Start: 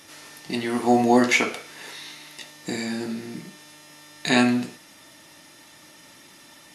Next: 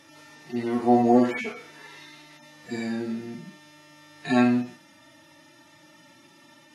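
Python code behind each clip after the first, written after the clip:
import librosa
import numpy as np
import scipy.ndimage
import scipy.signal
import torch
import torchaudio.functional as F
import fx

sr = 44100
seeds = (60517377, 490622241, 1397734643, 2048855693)

y = fx.hpss_only(x, sr, part='harmonic')
y = fx.high_shelf(y, sr, hz=4100.0, db=-11.0)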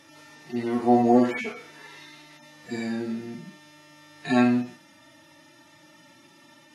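y = x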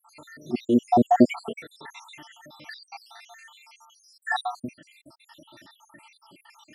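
y = fx.spec_dropout(x, sr, seeds[0], share_pct=79)
y = y * 10.0 ** (7.5 / 20.0)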